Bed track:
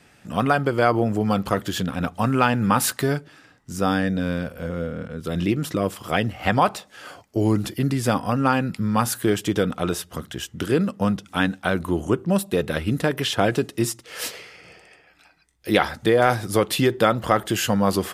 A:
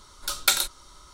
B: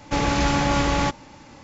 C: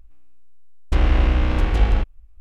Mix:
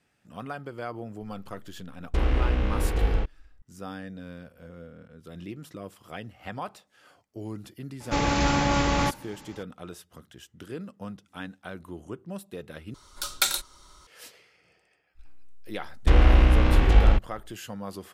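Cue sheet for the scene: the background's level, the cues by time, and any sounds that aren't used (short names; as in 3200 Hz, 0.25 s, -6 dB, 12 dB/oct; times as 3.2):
bed track -17 dB
1.22 add C -7 dB + bell 450 Hz +8 dB 0.39 oct
8 add B -2.5 dB
12.94 replace with A -3 dB
15.15 add C, fades 0.05 s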